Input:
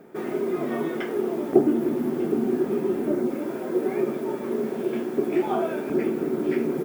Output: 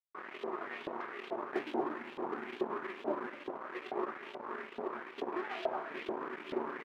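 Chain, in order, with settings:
high-frequency loss of the air 420 metres
log-companded quantiser 8 bits
dead-zone distortion −33.5 dBFS
single-tap delay 234 ms −8.5 dB
auto-filter band-pass saw up 2.3 Hz 650–3,500 Hz
level +3.5 dB

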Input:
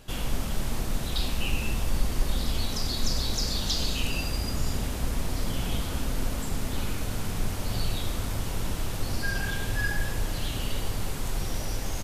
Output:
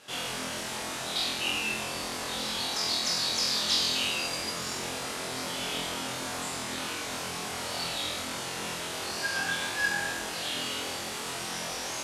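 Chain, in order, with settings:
variable-slope delta modulation 64 kbit/s
meter weighting curve A
flutter between parallel walls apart 4 metres, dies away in 0.58 s

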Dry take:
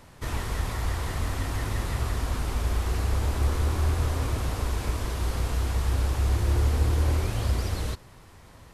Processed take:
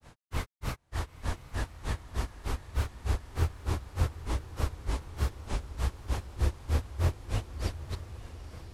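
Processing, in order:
granular cloud 164 ms, grains 3.3 per second, spray 22 ms, pitch spread up and down by 3 semitones
feedback delay with all-pass diffusion 917 ms, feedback 59%, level −13 dB
highs frequency-modulated by the lows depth 0.2 ms

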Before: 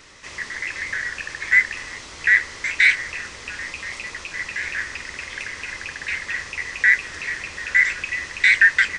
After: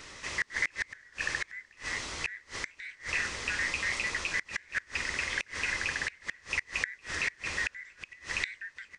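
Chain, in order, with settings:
gate with flip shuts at −17 dBFS, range −29 dB

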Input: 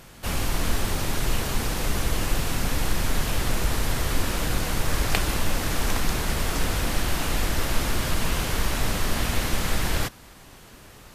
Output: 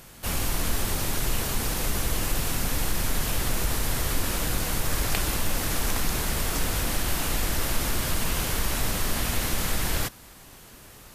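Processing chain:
high-shelf EQ 7,900 Hz +9 dB
in parallel at 0 dB: brickwall limiter −14 dBFS, peak gain reduction 10.5 dB
on the sum: level −8 dB

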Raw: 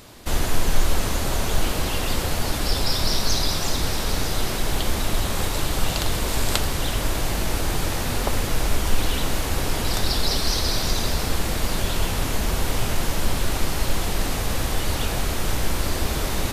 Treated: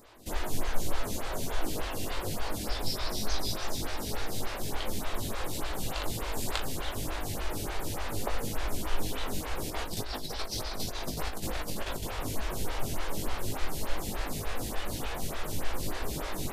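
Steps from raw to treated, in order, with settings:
0:09.70–0:12.03: compressor whose output falls as the input rises −24 dBFS, ratio −1
flutter between parallel walls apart 3.3 metres, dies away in 0.2 s
phaser with staggered stages 3.4 Hz
level −7.5 dB

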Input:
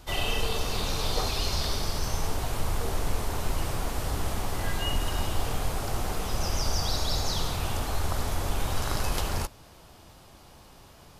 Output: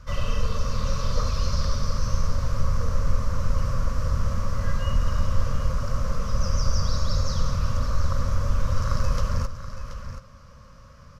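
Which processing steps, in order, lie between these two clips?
drawn EQ curve 120 Hz 0 dB, 240 Hz −4 dB, 360 Hz −26 dB, 540 Hz +1 dB, 780 Hz −26 dB, 1,100 Hz +1 dB, 3,600 Hz −17 dB, 5,700 Hz −6 dB, 8,800 Hz −23 dB
single-tap delay 729 ms −11.5 dB
dynamic equaliser 1,900 Hz, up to −4 dB, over −52 dBFS, Q 1
level +6.5 dB

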